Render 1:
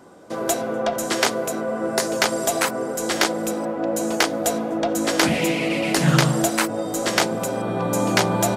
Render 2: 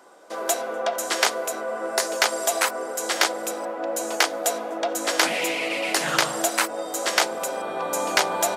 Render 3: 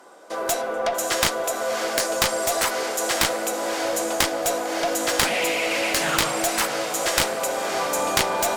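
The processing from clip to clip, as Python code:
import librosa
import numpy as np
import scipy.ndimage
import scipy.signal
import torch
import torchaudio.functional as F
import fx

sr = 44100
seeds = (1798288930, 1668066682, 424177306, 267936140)

y1 = scipy.signal.sosfilt(scipy.signal.butter(2, 560.0, 'highpass', fs=sr, output='sos'), x)
y2 = fx.echo_diffused(y1, sr, ms=612, feedback_pct=47, wet_db=-10)
y2 = fx.cheby_harmonics(y2, sr, harmonics=(6, 7), levels_db=(-22, -8), full_scale_db=-1.0)
y2 = y2 * librosa.db_to_amplitude(-2.0)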